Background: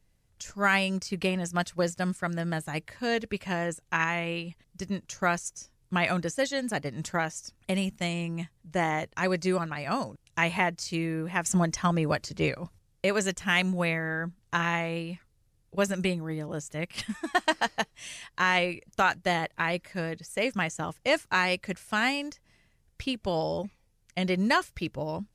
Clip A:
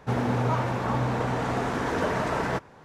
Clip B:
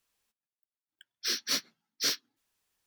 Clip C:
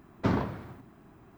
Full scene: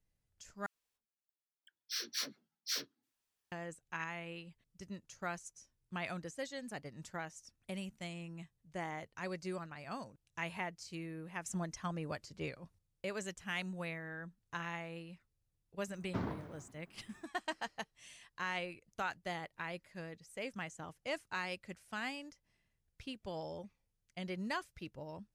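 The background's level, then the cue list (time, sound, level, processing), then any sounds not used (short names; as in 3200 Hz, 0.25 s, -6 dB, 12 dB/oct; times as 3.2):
background -14.5 dB
0.66 replace with B -8.5 dB + dispersion lows, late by 86 ms, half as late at 690 Hz
15.9 add C -11.5 dB
not used: A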